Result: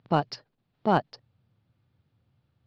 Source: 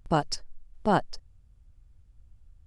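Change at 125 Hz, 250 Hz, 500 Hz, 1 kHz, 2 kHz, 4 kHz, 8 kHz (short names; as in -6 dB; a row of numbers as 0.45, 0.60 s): +1.0 dB, +0.5 dB, +0.5 dB, +1.0 dB, 0.0 dB, -3.0 dB, under -10 dB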